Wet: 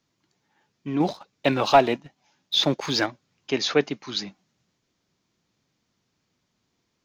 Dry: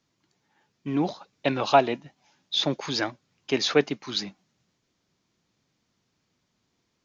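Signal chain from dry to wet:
0:01.00–0:03.06: leveller curve on the samples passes 1

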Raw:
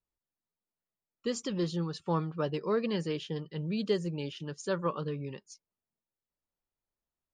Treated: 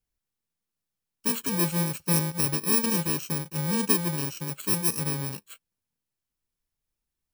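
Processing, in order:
samples in bit-reversed order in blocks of 64 samples
low-shelf EQ 120 Hz +4.5 dB
level +5.5 dB

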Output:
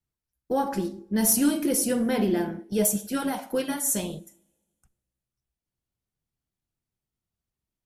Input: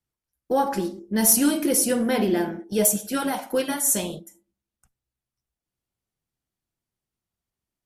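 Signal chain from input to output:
low-shelf EQ 220 Hz +7 dB
on a send: convolution reverb, pre-delay 3 ms, DRR 20 dB
on the sum: level −4.5 dB

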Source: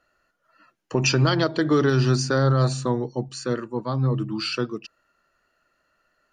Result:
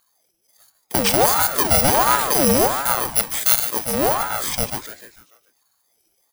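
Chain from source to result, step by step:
samples in bit-reversed order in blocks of 64 samples
0:03.09–0:03.69: tilt shelving filter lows −8.5 dB, about 670 Hz
in parallel at −5 dB: hard clipping −14 dBFS, distortion −17 dB
on the sum: echo with shifted repeats 147 ms, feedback 49%, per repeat +140 Hz, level −11 dB
ring modulator whose carrier an LFO sweeps 730 Hz, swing 55%, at 1.4 Hz
level +2 dB

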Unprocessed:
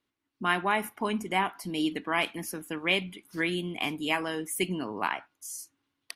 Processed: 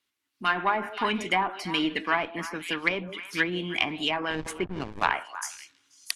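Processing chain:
one-sided soft clipper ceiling −19 dBFS
tilt shelving filter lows −8 dB, about 1,200 Hz
echo through a band-pass that steps 160 ms, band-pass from 460 Hz, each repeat 1.4 octaves, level −9.5 dB
automatic gain control gain up to 9 dB
0:04.30–0:05.10: slack as between gear wheels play −21.5 dBFS
treble cut that deepens with the level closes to 930 Hz, closed at −17 dBFS

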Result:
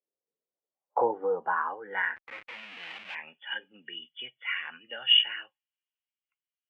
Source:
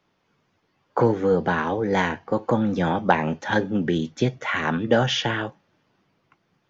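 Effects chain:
hearing-aid frequency compression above 2,800 Hz 4 to 1
in parallel at +1 dB: brickwall limiter −14.5 dBFS, peak gain reduction 10.5 dB
0:02.16–0:03.15: on the sum: comparator with hysteresis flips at −30 dBFS
band-pass filter sweep 490 Hz → 2,600 Hz, 0:00.42–0:02.61
every bin expanded away from the loudest bin 1.5 to 1
level −2 dB

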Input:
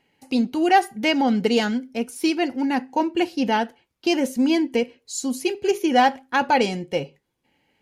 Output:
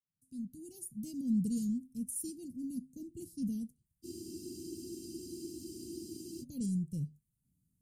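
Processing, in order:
fade in at the beginning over 1.16 s
elliptic band-stop filter 170–8,600 Hz, stop band 80 dB
frozen spectrum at 0:04.07, 2.35 s

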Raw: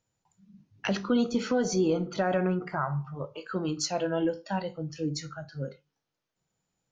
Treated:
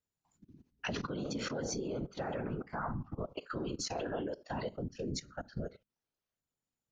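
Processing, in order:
output level in coarse steps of 19 dB
random phases in short frames
level +1 dB

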